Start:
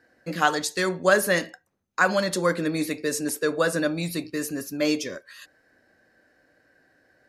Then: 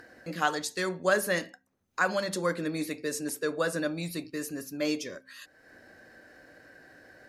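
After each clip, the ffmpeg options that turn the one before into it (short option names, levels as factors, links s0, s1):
-af "bandreject=f=65.56:t=h:w=4,bandreject=f=131.12:t=h:w=4,bandreject=f=196.68:t=h:w=4,bandreject=f=262.24:t=h:w=4,acompressor=mode=upward:threshold=0.02:ratio=2.5,volume=0.501"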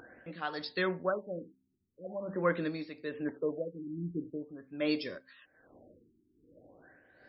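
-af "tremolo=f=1.2:d=0.7,afftfilt=real='re*lt(b*sr/1024,390*pow(5600/390,0.5+0.5*sin(2*PI*0.44*pts/sr)))':imag='im*lt(b*sr/1024,390*pow(5600/390,0.5+0.5*sin(2*PI*0.44*pts/sr)))':win_size=1024:overlap=0.75"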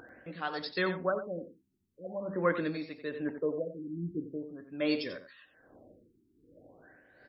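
-af "aecho=1:1:90:0.299,volume=1.12"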